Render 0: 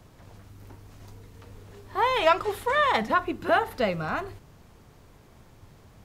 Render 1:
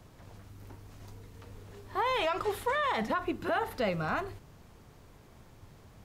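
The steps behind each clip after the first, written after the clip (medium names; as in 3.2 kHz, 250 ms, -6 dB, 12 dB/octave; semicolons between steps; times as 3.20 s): peak limiter -19 dBFS, peak gain reduction 10.5 dB; trim -2 dB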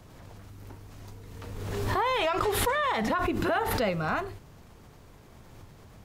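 swell ahead of each attack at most 28 dB/s; trim +2.5 dB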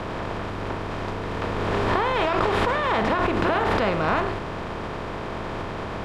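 spectral levelling over time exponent 0.4; distance through air 140 m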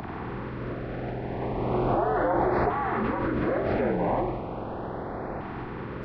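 frequency axis rescaled in octaves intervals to 77%; LFO notch saw up 0.37 Hz 500–3300 Hz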